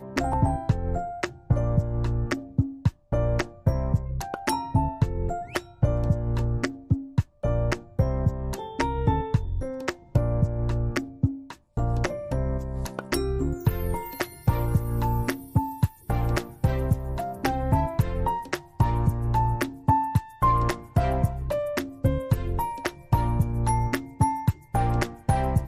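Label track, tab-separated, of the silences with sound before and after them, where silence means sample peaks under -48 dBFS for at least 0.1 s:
2.940000	3.120000	silence
7.250000	7.430000	silence
11.570000	11.770000	silence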